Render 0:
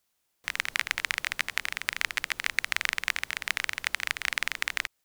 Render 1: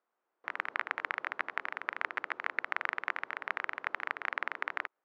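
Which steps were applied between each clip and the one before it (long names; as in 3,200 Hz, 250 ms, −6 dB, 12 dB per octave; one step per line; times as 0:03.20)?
Chebyshev band-pass filter 350–1,300 Hz, order 2
level +3 dB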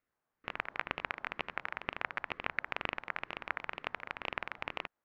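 ring modulator whose carrier an LFO sweeps 490 Hz, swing 60%, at 2.1 Hz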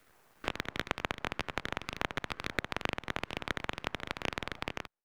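fade-out on the ending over 0.53 s
half-wave rectification
multiband upward and downward compressor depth 70%
level +5.5 dB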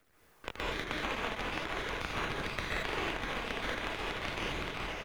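phase shifter 0.45 Hz, delay 4.6 ms, feedback 34%
single-tap delay 1,191 ms −10.5 dB
convolution reverb, pre-delay 117 ms, DRR −7 dB
level −7 dB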